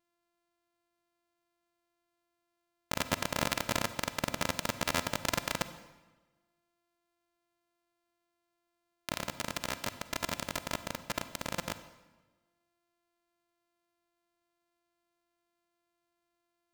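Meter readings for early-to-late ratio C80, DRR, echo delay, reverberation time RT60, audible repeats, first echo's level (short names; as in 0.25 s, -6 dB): 14.0 dB, 11.5 dB, none, 1.2 s, none, none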